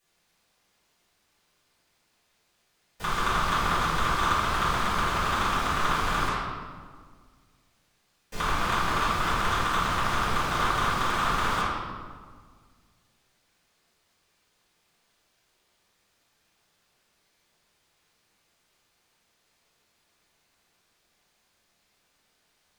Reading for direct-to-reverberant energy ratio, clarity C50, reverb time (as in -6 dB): -13.5 dB, -2.0 dB, 1.7 s